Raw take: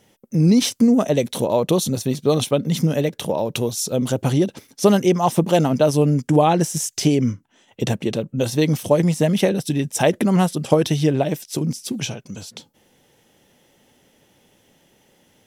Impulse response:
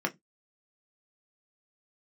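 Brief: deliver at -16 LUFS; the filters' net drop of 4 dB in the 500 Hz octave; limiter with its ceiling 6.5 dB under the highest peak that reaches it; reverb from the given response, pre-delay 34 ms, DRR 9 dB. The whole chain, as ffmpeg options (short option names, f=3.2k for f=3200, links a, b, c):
-filter_complex "[0:a]equalizer=f=500:t=o:g=-5,alimiter=limit=-11dB:level=0:latency=1,asplit=2[a][b];[1:a]atrim=start_sample=2205,adelay=34[c];[b][c]afir=irnorm=-1:irlink=0,volume=-16.5dB[d];[a][d]amix=inputs=2:normalize=0,volume=5.5dB"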